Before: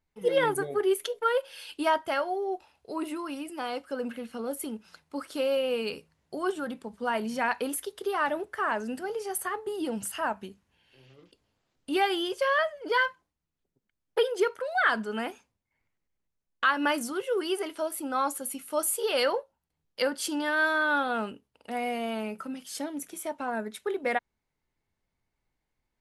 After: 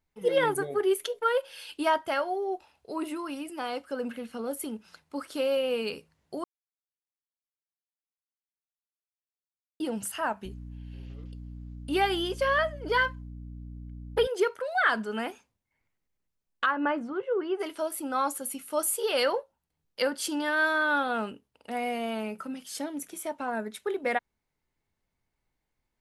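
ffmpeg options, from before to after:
-filter_complex "[0:a]asettb=1/sr,asplit=3[s0][s1][s2];[s0]atrim=end=10.454[s3];[s1]atrim=start=10.45:end=14.27,asetpts=PTS-STARTPTS,afade=t=in:d=0.004:c=qsin,afade=t=out:st=3.816:d=0.004:c=qsin,aeval=exprs='val(0)+0.01*(sin(2*PI*60*n/s)+sin(2*PI*2*60*n/s)/2+sin(2*PI*3*60*n/s)/3+sin(2*PI*4*60*n/s)/4+sin(2*PI*5*60*n/s)/5)':c=same[s4];[s2]atrim=start=14.266[s5];[s3][s4]acrossfade=d=0.004:c1=hsin:c2=qsin[s6];[s6][s5]acrossfade=d=0.004:c1=qsin:c2=hsin,asplit=3[s7][s8][s9];[s7]afade=t=out:st=16.65:d=0.02[s10];[s8]lowpass=1500,afade=t=in:st=16.65:d=0.02,afade=t=out:st=17.59:d=0.02[s11];[s9]afade=t=in:st=17.59:d=0.02[s12];[s10][s11][s12]amix=inputs=3:normalize=0,asplit=3[s13][s14][s15];[s13]atrim=end=6.44,asetpts=PTS-STARTPTS,afade=t=out:st=6.436:d=0.004:c=hsin[s16];[s14]atrim=start=6.44:end=9.8,asetpts=PTS-STARTPTS,volume=0[s17];[s15]atrim=start=9.8,asetpts=PTS-STARTPTS,afade=t=in:d=0.004:c=hsin[s18];[s16][s17][s18]concat=n=3:v=0:a=1"

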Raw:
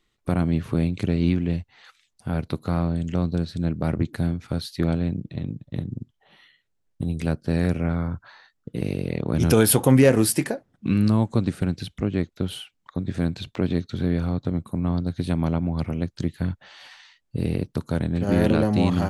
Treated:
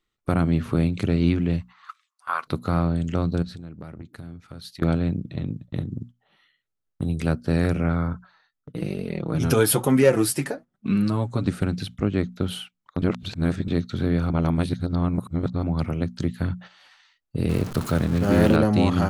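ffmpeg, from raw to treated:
-filter_complex "[0:a]asplit=3[s0][s1][s2];[s0]afade=t=out:st=1.6:d=0.02[s3];[s1]highpass=f=1100:t=q:w=10,afade=t=in:st=1.6:d=0.02,afade=t=out:st=2.46:d=0.02[s4];[s2]afade=t=in:st=2.46:d=0.02[s5];[s3][s4][s5]amix=inputs=3:normalize=0,asettb=1/sr,asplit=3[s6][s7][s8];[s6]atrim=end=3.424[s9];[s7]atrim=start=3.42:end=4.82,asetpts=PTS-STARTPTS,afade=t=in:d=0.004:c=qsin,afade=t=out:st=1.396:d=0.004:c=qsin,acompressor=threshold=0.0178:ratio=12:attack=3.2:release=140:knee=1:detection=peak[s10];[s8]atrim=start=4.816[s11];[s9][s10]acrossfade=d=0.004:c1=hsin:c2=qsin[s12];[s12][s11]acrossfade=d=0.004:c1=qsin:c2=hsin,asettb=1/sr,asplit=3[s13][s14][s15];[s13]atrim=end=8.134[s16];[s14]atrim=start=8.13:end=11.45,asetpts=PTS-STARTPTS,afade=t=in:d=0.004:c=qsin,afade=t=out:st=3.316:d=0.004:c=qsin,flanger=delay=4.4:depth=3.4:regen=17:speed=1.1:shape=triangular[s17];[s15]atrim=start=11.446[s18];[s16][s17]acrossfade=d=0.004:c1=hsin:c2=qsin[s19];[s19][s18]acrossfade=d=0.004:c1=qsin:c2=hsin,asettb=1/sr,asplit=3[s20][s21][s22];[s20]atrim=end=17.494[s23];[s21]atrim=start=17.49:end=18.56,asetpts=PTS-STARTPTS,afade=t=in:d=0.004:c=qsin,afade=t=out:st=1.066:d=0.004:c=qsin,aeval=exprs='val(0)+0.5*0.0299*sgn(val(0))':c=same[s24];[s22]atrim=start=18.556[s25];[s23][s24]acrossfade=d=0.004:c1=hsin:c2=qsin[s26];[s26][s25]acrossfade=d=0.004:c1=qsin:c2=hsin,asplit=5[s27][s28][s29][s30][s31];[s27]atrim=end=13.022[s32];[s28]atrim=start=13.018:end=13.682,asetpts=PTS-STARTPTS,areverse[s33];[s29]atrim=start=13.678:end=14.302[s34];[s30]atrim=start=14.298:end=15.632,asetpts=PTS-STARTPTS,areverse[s35];[s31]atrim=start=15.628[s36];[s32][s33]acrossfade=d=0.004:c1=hsin:c2=hsin[s37];[s37][s34]acrossfade=d=0.004:c1=hsin:c2=hsin[s38];[s38][s35]acrossfade=d=0.004:c1=hsin:c2=hsin[s39];[s39][s36]acrossfade=d=0.004:c1=hsin:c2=hsin,bandreject=f=60:t=h:w=6,bandreject=f=120:t=h:w=6,bandreject=f=180:t=h:w=6,bandreject=f=240:t=h:w=6,agate=range=0.316:threshold=0.00891:ratio=16:detection=peak,equalizer=f=1300:w=5.1:g=6,volume=1.19"

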